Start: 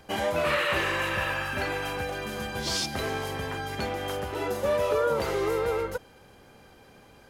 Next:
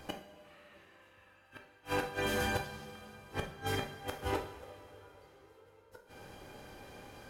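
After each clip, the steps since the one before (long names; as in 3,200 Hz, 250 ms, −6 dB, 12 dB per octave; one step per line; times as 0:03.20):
gate with flip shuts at −22 dBFS, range −36 dB
coupled-rooms reverb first 0.49 s, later 3.8 s, from −16 dB, DRR 2 dB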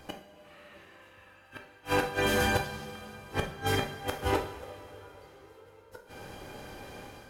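automatic gain control gain up to 6.5 dB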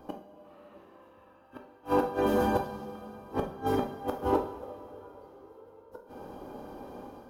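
octave-band graphic EQ 125/250/500/1,000/2,000/4,000/8,000 Hz −4/+10/+4/+8/−12/−4/−10 dB
level −4 dB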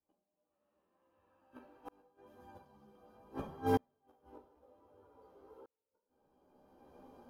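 multi-voice chorus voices 2, 0.8 Hz, delay 14 ms, depth 2.8 ms
tremolo with a ramp in dB swelling 0.53 Hz, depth 40 dB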